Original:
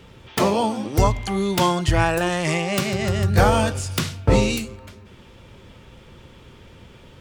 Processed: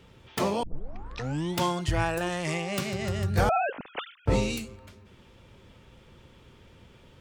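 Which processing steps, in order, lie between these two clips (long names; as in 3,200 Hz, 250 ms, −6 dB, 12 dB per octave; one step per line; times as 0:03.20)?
0:00.63: tape start 0.96 s
0:03.49–0:04.26: three sine waves on the formant tracks
level −8 dB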